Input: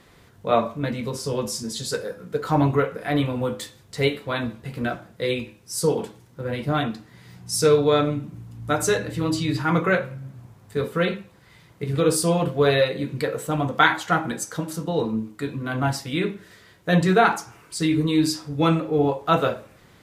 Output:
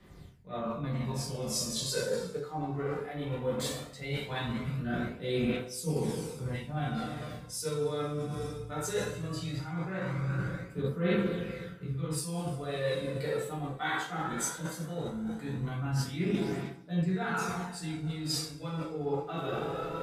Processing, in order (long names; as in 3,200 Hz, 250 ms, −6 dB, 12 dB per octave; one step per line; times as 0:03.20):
low-shelf EQ 190 Hz +4 dB
coupled-rooms reverb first 0.53 s, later 4 s, from −18 dB, DRR −7 dB
reversed playback
downward compressor 16 to 1, threshold −23 dBFS, peak gain reduction 21 dB
reversed playback
phase shifter 0.18 Hz, delay 2.7 ms, feedback 40%
multiband upward and downward expander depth 40%
level −7.5 dB